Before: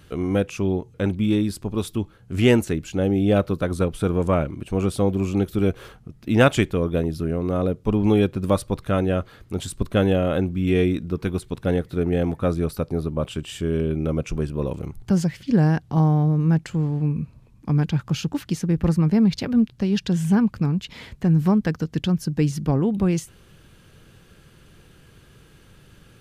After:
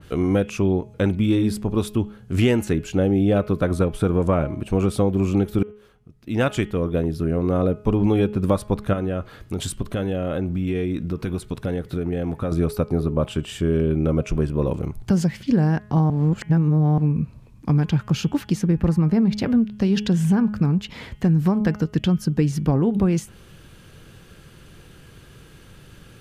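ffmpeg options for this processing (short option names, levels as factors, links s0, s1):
-filter_complex "[0:a]asettb=1/sr,asplit=3[s0][s1][s2];[s0]atrim=end=8.934[s3];[s1]atrim=start=8.93:end=12.52,asetpts=PTS-STARTPTS,afade=t=in:d=0.004:c=qsin,afade=t=out:st=3.586:d=0.004:c=qsin,acompressor=threshold=0.0562:ratio=6:attack=3.2:release=140:knee=1:detection=peak[s4];[s2]atrim=start=12.516[s5];[s3][s4]acrossfade=d=0.004:c1=hsin:c2=qsin[s6];[s6][s5]acrossfade=d=0.004:c1=qsin:c2=hsin,asplit=4[s7][s8][s9][s10];[s7]atrim=end=5.63,asetpts=PTS-STARTPTS,afade=t=out:st=5.626:d=0.004:c=hsin[s11];[s8]atrim=start=5.63:end=16.102,asetpts=PTS-STARTPTS,afade=t=in:d=2.03[s12];[s9]atrim=start=16.098:end=16.982,asetpts=PTS-STARTPTS,areverse[s13];[s10]atrim=start=16.978[s14];[s11][s12]concat=n=2:v=0:a=1[s15];[s15][s13]acrossfade=d=0.004:c1=hsin:c2=hsin[s16];[s16][s14]acrossfade=d=0.004:c1=hsin:c2=hsin,bandreject=f=209.6:t=h:w=4,bandreject=f=419.2:t=h:w=4,bandreject=f=628.8:t=h:w=4,bandreject=f=838.4:t=h:w=4,bandreject=f=1048:t=h:w=4,bandreject=f=1257.6:t=h:w=4,bandreject=f=1467.2:t=h:w=4,bandreject=f=1676.8:t=h:w=4,bandreject=f=1886.4:t=h:w=4,bandreject=f=2096:t=h:w=4,bandreject=f=2305.6:t=h:w=4,bandreject=f=2515.2:t=h:w=4,bandreject=f=2724.8:t=h:w=4,bandreject=f=2934.4:t=h:w=4,bandreject=f=3144:t=h:w=4,bandreject=f=3353.6:t=h:w=4,acompressor=threshold=0.112:ratio=6,adynamicequalizer=threshold=0.00501:dfrequency=2200:dqfactor=0.7:tfrequency=2200:tqfactor=0.7:attack=5:release=100:ratio=0.375:range=2.5:mode=cutabove:tftype=highshelf,volume=1.68"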